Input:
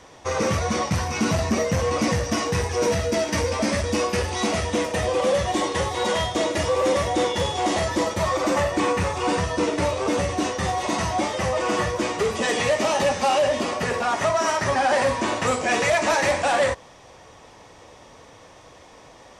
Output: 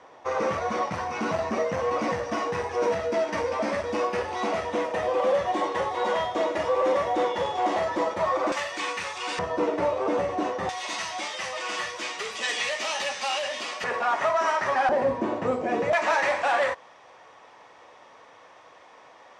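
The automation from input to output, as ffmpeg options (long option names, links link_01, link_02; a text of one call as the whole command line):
ffmpeg -i in.wav -af "asetnsamples=nb_out_samples=441:pad=0,asendcmd='8.52 bandpass f 3100;9.39 bandpass f 690;10.69 bandpass f 3200;13.84 bandpass f 1200;14.89 bandpass f 350;15.93 bandpass f 1300',bandpass=frequency=860:width_type=q:width=0.74:csg=0" out.wav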